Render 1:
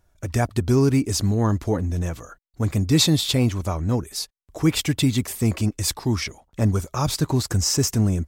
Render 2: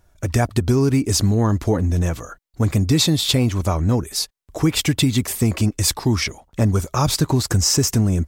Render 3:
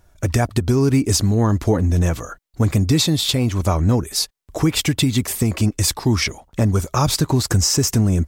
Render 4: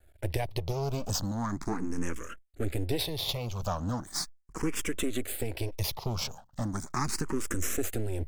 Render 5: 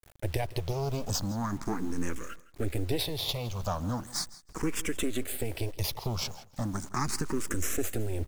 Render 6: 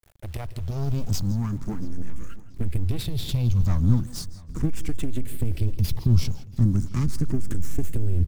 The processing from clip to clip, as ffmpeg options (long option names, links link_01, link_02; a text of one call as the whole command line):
ffmpeg -i in.wav -af "acompressor=threshold=-19dB:ratio=6,volume=6dB" out.wav
ffmpeg -i in.wav -af "alimiter=limit=-10.5dB:level=0:latency=1:release=467,volume=3dB" out.wav
ffmpeg -i in.wav -filter_complex "[0:a]asplit=2[link_01][link_02];[link_02]acompressor=threshold=-24dB:ratio=6,volume=-1dB[link_03];[link_01][link_03]amix=inputs=2:normalize=0,aeval=exprs='max(val(0),0)':channel_layout=same,asplit=2[link_04][link_05];[link_05]afreqshift=0.38[link_06];[link_04][link_06]amix=inputs=2:normalize=1,volume=-8.5dB" out.wav
ffmpeg -i in.wav -af "acrusher=bits=8:mix=0:aa=0.000001,aecho=1:1:163|326:0.112|0.0224" out.wav
ffmpeg -i in.wav -filter_complex "[0:a]aeval=exprs='0.211*(cos(1*acos(clip(val(0)/0.211,-1,1)))-cos(1*PI/2))+0.0531*(cos(4*acos(clip(val(0)/0.211,-1,1)))-cos(4*PI/2))':channel_layout=same,asubboost=boost=11:cutoff=210,asplit=2[link_01][link_02];[link_02]adelay=681,lowpass=frequency=4500:poles=1,volume=-21.5dB,asplit=2[link_03][link_04];[link_04]adelay=681,lowpass=frequency=4500:poles=1,volume=0.49,asplit=2[link_05][link_06];[link_06]adelay=681,lowpass=frequency=4500:poles=1,volume=0.49[link_07];[link_01][link_03][link_05][link_07]amix=inputs=4:normalize=0,volume=-2.5dB" out.wav